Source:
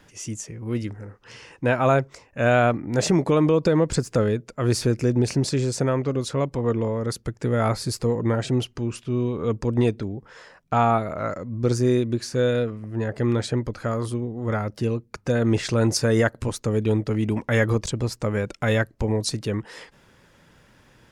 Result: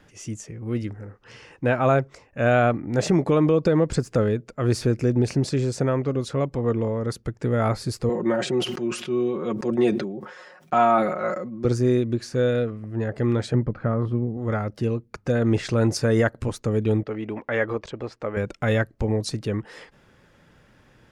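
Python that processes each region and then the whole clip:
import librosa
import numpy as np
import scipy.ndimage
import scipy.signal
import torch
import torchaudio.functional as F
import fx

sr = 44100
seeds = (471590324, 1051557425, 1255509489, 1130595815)

y = fx.chain(x, sr, fx.highpass(hz=240.0, slope=12),
    fx.comb(ms=5.5, depth=0.87),
    fx.sustainer(db_per_s=59.0), at=(8.09, 11.65))
y = fx.chain(y, sr, fx.lowpass(hz=2000.0, slope=12),
    fx.peak_eq(hz=160.0, db=9.0, octaves=0.79), at=(13.54, 14.37))
y = fx.chain(y, sr, fx.lowpass(hz=7100.0, slope=12),
    fx.bass_treble(bass_db=-14, treble_db=-12), at=(17.03, 18.37))
y = fx.high_shelf(y, sr, hz=3600.0, db=-7.0)
y = fx.notch(y, sr, hz=970.0, q=15.0)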